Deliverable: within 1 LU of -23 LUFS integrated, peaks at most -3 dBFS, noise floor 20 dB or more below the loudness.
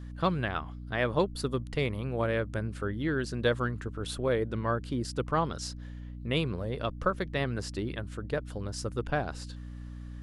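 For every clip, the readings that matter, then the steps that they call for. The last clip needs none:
hum 60 Hz; highest harmonic 300 Hz; hum level -39 dBFS; loudness -32.0 LUFS; peak level -13.0 dBFS; loudness target -23.0 LUFS
-> de-hum 60 Hz, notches 5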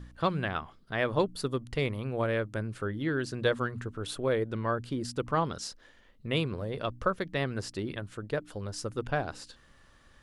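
hum not found; loudness -32.5 LUFS; peak level -13.0 dBFS; loudness target -23.0 LUFS
-> trim +9.5 dB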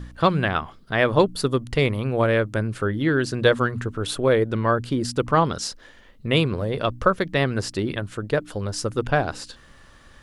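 loudness -23.0 LUFS; peak level -3.5 dBFS; noise floor -50 dBFS

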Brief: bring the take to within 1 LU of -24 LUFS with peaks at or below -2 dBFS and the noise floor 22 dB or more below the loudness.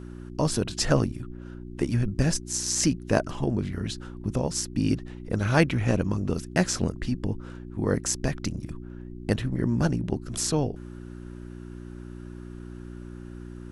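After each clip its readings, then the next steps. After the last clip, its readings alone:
hum 60 Hz; highest harmonic 360 Hz; hum level -38 dBFS; loudness -27.5 LUFS; peak level -4.0 dBFS; loudness target -24.0 LUFS
-> de-hum 60 Hz, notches 6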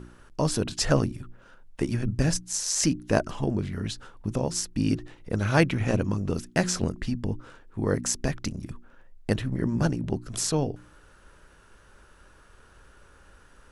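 hum not found; loudness -27.5 LUFS; peak level -4.5 dBFS; loudness target -24.0 LUFS
-> trim +3.5 dB; peak limiter -2 dBFS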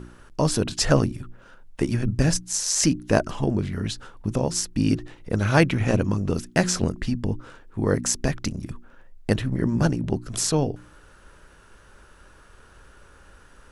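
loudness -24.0 LUFS; peak level -2.0 dBFS; noise floor -52 dBFS

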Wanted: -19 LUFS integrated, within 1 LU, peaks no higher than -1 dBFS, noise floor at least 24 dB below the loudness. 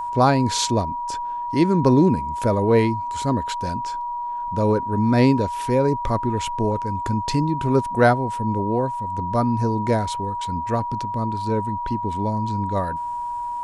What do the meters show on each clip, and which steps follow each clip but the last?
steady tone 960 Hz; tone level -25 dBFS; loudness -22.0 LUFS; peak level -4.5 dBFS; loudness target -19.0 LUFS
-> band-stop 960 Hz, Q 30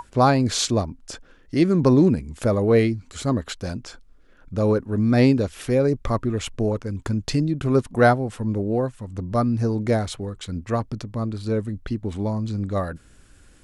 steady tone not found; loudness -22.5 LUFS; peak level -5.0 dBFS; loudness target -19.0 LUFS
-> trim +3.5 dB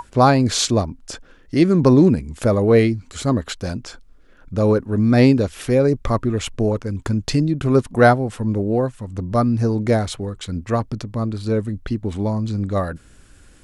loudness -19.0 LUFS; peak level -1.5 dBFS; noise floor -49 dBFS

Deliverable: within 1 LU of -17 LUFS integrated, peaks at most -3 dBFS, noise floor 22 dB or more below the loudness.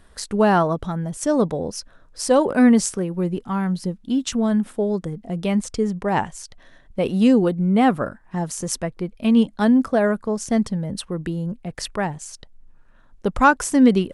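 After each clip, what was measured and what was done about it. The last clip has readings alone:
loudness -21.0 LUFS; peak level -3.0 dBFS; loudness target -17.0 LUFS
-> trim +4 dB; peak limiter -3 dBFS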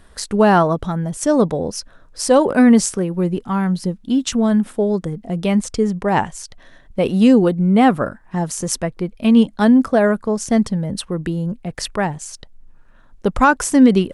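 loudness -17.5 LUFS; peak level -3.0 dBFS; noise floor -47 dBFS

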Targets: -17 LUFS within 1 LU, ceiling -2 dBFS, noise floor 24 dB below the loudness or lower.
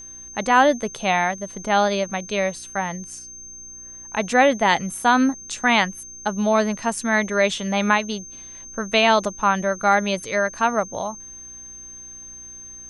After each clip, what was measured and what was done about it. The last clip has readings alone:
hum 60 Hz; highest harmonic 360 Hz; hum level -53 dBFS; steady tone 6.3 kHz; tone level -37 dBFS; loudness -21.0 LUFS; peak level -3.5 dBFS; loudness target -17.0 LUFS
-> de-hum 60 Hz, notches 6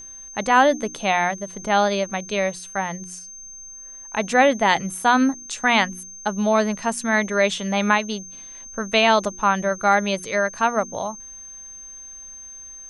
hum not found; steady tone 6.3 kHz; tone level -37 dBFS
-> band-stop 6.3 kHz, Q 30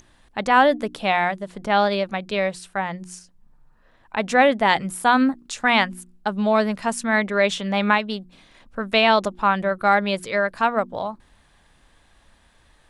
steady tone not found; loudness -21.0 LUFS; peak level -3.5 dBFS; loudness target -17.0 LUFS
-> trim +4 dB; peak limiter -2 dBFS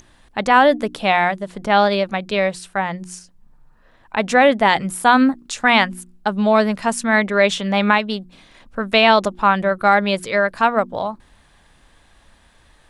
loudness -17.5 LUFS; peak level -2.0 dBFS; noise floor -54 dBFS

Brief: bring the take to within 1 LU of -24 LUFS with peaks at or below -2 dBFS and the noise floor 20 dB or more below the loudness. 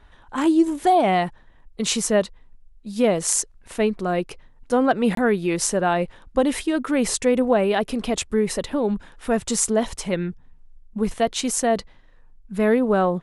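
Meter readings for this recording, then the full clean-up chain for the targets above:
dropouts 1; longest dropout 23 ms; loudness -22.0 LUFS; peak level -3.0 dBFS; loudness target -24.0 LUFS
-> interpolate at 5.15 s, 23 ms; trim -2 dB

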